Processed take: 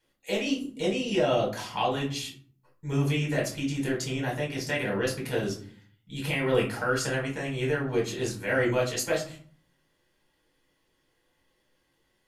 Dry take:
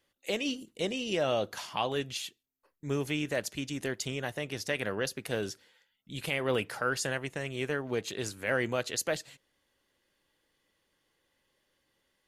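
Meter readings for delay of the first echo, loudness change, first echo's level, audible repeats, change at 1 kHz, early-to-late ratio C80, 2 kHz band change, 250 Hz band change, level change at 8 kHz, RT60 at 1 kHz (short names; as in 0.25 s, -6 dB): none, +4.5 dB, none, none, +4.5 dB, 13.5 dB, +3.0 dB, +6.5 dB, +2.0 dB, 0.50 s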